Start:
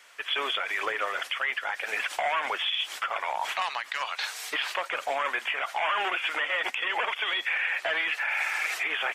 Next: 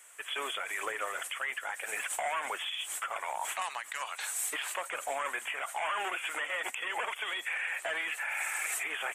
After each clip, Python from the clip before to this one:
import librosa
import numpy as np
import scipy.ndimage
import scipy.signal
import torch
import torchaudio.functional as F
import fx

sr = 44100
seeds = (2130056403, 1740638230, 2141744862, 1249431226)

y = fx.high_shelf_res(x, sr, hz=6400.0, db=10.0, q=3.0)
y = y * librosa.db_to_amplitude(-5.5)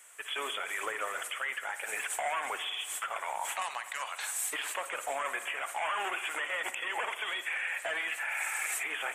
y = fx.rev_spring(x, sr, rt60_s=1.5, pass_ms=(54,), chirp_ms=45, drr_db=11.0)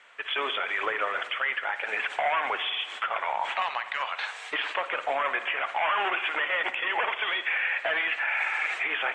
y = scipy.signal.sosfilt(scipy.signal.butter(4, 3900.0, 'lowpass', fs=sr, output='sos'), x)
y = y * librosa.db_to_amplitude(7.0)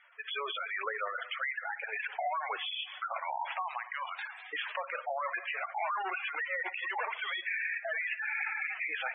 y = fx.spec_gate(x, sr, threshold_db=-10, keep='strong')
y = y * librosa.db_to_amplitude(-5.5)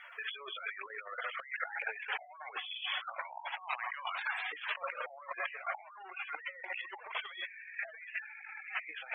y = fx.over_compress(x, sr, threshold_db=-43.0, ratio=-0.5)
y = y * librosa.db_to_amplitude(2.5)